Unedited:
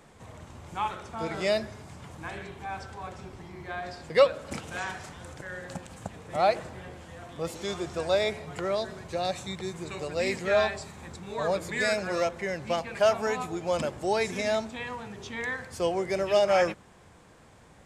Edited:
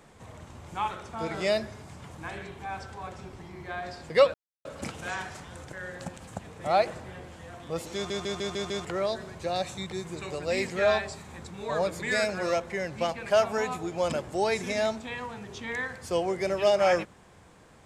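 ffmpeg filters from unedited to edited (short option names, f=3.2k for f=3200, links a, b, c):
-filter_complex "[0:a]asplit=8[a][b][c][d][e][f][g][h];[a]atrim=end=4.34,asetpts=PTS-STARTPTS,afade=t=out:st=4.336:d=0.004:c=hsin,apad=pad_dur=0.31[i];[b]atrim=start=4.34:end=7.792,asetpts=PTS-STARTPTS,afade=t=in:d=0.004:c=hsin[j];[c]atrim=start=7.638:end=7.792[k];[d]atrim=start=7.638:end=7.792[l];[e]atrim=start=7.638:end=7.792[m];[f]atrim=start=7.638:end=7.792[n];[g]atrim=start=7.638:end=7.792[o];[h]atrim=start=8.538[p];[i][j]concat=n=2:v=0:a=1[q];[q][k]acrossfade=d=0.004:c1=hsin:c2=hsin[r];[r][l]acrossfade=d=0.004:c1=hsin:c2=hsin[s];[s][m]acrossfade=d=0.004:c1=hsin:c2=hsin[t];[t][n]acrossfade=d=0.004:c1=hsin:c2=hsin[u];[u][o]acrossfade=d=0.004:c1=hsin:c2=hsin[v];[v][p]acrossfade=d=0.004:c1=hsin:c2=hsin"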